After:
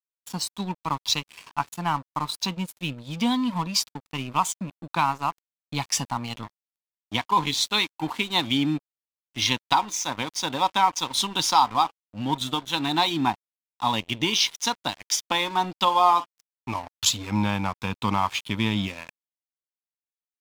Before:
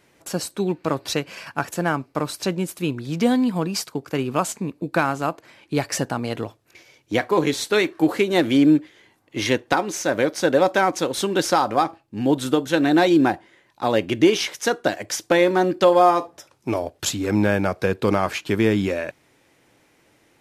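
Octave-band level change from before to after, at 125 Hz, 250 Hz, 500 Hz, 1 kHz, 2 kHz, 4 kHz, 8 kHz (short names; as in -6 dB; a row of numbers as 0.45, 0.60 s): -4.0, -8.5, -15.5, +0.5, -5.0, +4.5, +1.0 dB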